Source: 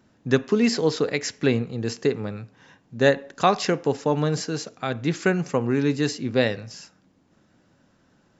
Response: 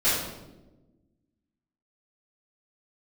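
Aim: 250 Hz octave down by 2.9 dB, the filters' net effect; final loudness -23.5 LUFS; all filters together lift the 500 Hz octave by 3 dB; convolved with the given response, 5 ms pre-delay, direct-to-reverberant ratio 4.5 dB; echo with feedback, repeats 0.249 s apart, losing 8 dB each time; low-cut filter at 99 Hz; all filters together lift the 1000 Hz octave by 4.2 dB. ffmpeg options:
-filter_complex "[0:a]highpass=99,equalizer=f=250:t=o:g=-5,equalizer=f=500:t=o:g=4,equalizer=f=1k:t=o:g=4.5,aecho=1:1:249|498|747|996|1245:0.398|0.159|0.0637|0.0255|0.0102,asplit=2[a][b];[1:a]atrim=start_sample=2205,adelay=5[c];[b][c]afir=irnorm=-1:irlink=0,volume=-19dB[d];[a][d]amix=inputs=2:normalize=0,volume=-3dB"

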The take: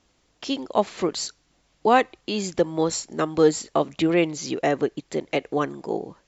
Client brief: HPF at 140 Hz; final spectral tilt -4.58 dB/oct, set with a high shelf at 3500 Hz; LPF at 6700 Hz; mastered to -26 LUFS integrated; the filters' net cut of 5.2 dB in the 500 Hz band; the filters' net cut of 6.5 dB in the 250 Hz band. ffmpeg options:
-af "highpass=140,lowpass=6.7k,equalizer=f=250:t=o:g=-7,equalizer=f=500:t=o:g=-4,highshelf=f=3.5k:g=-7.5,volume=3dB"

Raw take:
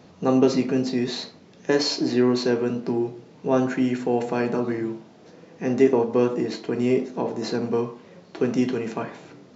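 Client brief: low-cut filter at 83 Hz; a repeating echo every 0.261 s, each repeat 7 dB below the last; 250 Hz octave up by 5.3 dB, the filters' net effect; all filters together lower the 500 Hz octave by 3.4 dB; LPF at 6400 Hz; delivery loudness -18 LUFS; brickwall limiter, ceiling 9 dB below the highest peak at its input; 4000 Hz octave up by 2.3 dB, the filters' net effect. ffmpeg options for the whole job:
-af "highpass=83,lowpass=6.4k,equalizer=f=250:t=o:g=8,equalizer=f=500:t=o:g=-8.5,equalizer=f=4k:t=o:g=3.5,alimiter=limit=-13dB:level=0:latency=1,aecho=1:1:261|522|783|1044|1305:0.447|0.201|0.0905|0.0407|0.0183,volume=4.5dB"

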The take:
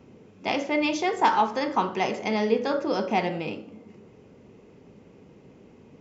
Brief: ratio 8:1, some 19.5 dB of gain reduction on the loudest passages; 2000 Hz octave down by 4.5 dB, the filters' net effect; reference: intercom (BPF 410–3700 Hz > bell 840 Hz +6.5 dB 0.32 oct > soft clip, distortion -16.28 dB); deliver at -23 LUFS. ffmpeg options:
-af "equalizer=f=2k:t=o:g=-5,acompressor=threshold=-38dB:ratio=8,highpass=410,lowpass=3.7k,equalizer=f=840:t=o:w=0.32:g=6.5,asoftclip=threshold=-32dB,volume=20dB"

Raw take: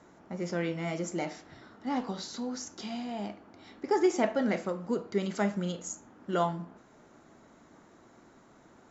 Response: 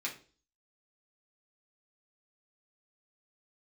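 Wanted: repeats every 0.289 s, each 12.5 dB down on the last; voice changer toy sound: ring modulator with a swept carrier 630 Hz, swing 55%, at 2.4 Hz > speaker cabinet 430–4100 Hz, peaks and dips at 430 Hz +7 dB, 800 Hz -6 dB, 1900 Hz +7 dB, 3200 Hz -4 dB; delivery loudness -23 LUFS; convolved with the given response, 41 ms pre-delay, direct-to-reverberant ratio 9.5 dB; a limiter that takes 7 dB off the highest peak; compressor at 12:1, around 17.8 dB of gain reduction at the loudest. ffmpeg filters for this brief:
-filter_complex "[0:a]acompressor=threshold=-39dB:ratio=12,alimiter=level_in=11.5dB:limit=-24dB:level=0:latency=1,volume=-11.5dB,aecho=1:1:289|578|867:0.237|0.0569|0.0137,asplit=2[a][b];[1:a]atrim=start_sample=2205,adelay=41[c];[b][c]afir=irnorm=-1:irlink=0,volume=-12dB[d];[a][d]amix=inputs=2:normalize=0,aeval=exprs='val(0)*sin(2*PI*630*n/s+630*0.55/2.4*sin(2*PI*2.4*n/s))':c=same,highpass=430,equalizer=f=430:t=q:w=4:g=7,equalizer=f=800:t=q:w=4:g=-6,equalizer=f=1.9k:t=q:w=4:g=7,equalizer=f=3.2k:t=q:w=4:g=-4,lowpass=f=4.1k:w=0.5412,lowpass=f=4.1k:w=1.3066,volume=27.5dB"

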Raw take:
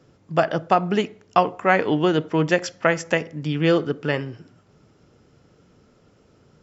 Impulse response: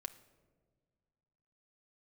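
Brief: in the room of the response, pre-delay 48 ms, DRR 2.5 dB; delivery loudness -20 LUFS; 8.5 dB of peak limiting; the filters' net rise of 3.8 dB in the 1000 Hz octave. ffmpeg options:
-filter_complex "[0:a]equalizer=f=1k:t=o:g=5.5,alimiter=limit=-7.5dB:level=0:latency=1,asplit=2[a][b];[1:a]atrim=start_sample=2205,adelay=48[c];[b][c]afir=irnorm=-1:irlink=0,volume=1dB[d];[a][d]amix=inputs=2:normalize=0,volume=1dB"

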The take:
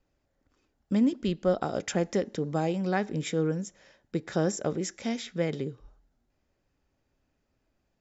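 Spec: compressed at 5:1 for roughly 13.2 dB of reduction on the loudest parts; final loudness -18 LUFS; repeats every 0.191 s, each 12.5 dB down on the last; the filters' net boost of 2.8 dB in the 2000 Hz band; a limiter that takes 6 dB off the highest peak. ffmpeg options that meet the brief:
-af "equalizer=f=2k:t=o:g=3.5,acompressor=threshold=-35dB:ratio=5,alimiter=level_in=5.5dB:limit=-24dB:level=0:latency=1,volume=-5.5dB,aecho=1:1:191|382|573:0.237|0.0569|0.0137,volume=22.5dB"

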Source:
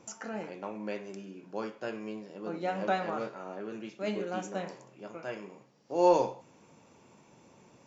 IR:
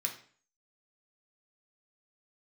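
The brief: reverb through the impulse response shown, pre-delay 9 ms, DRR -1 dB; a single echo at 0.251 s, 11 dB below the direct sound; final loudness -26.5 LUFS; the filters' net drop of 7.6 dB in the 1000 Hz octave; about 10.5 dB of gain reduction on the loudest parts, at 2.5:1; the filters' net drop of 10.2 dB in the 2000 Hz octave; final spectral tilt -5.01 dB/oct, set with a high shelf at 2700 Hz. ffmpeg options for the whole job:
-filter_complex "[0:a]equalizer=f=1k:t=o:g=-8,equalizer=f=2k:t=o:g=-8.5,highshelf=f=2.7k:g=-6,acompressor=threshold=-37dB:ratio=2.5,aecho=1:1:251:0.282,asplit=2[a][b];[1:a]atrim=start_sample=2205,adelay=9[c];[b][c]afir=irnorm=-1:irlink=0,volume=-1dB[d];[a][d]amix=inputs=2:normalize=0,volume=13.5dB"

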